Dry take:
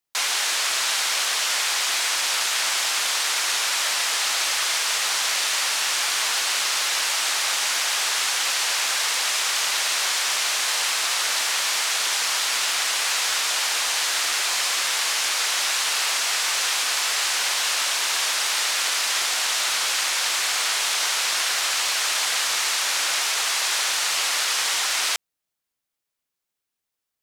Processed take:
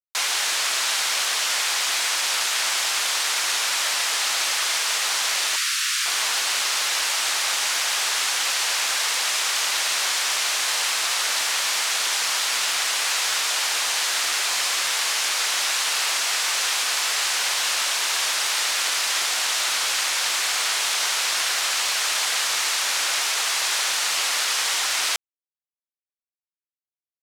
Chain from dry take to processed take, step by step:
0:05.56–0:06.06: Butterworth high-pass 1,200 Hz 48 dB per octave
bit reduction 9 bits

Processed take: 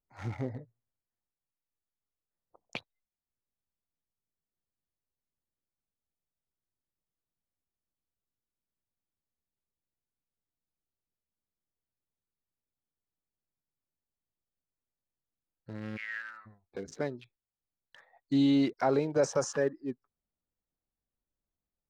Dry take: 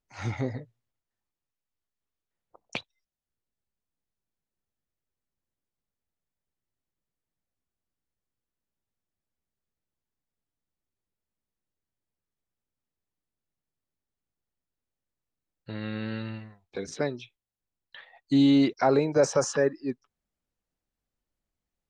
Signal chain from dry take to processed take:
adaptive Wiener filter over 15 samples
0:15.96–0:16.45: high-pass with resonance 2,300 Hz → 1,200 Hz, resonance Q 12
level −5 dB

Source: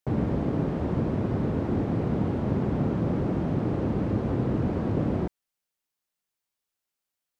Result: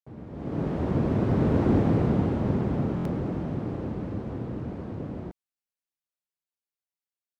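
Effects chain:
source passing by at 0:01.70, 7 m/s, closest 3.5 metres
automatic gain control gain up to 15.5 dB
buffer that repeats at 0:02.96, samples 1,024, times 3
level −8 dB

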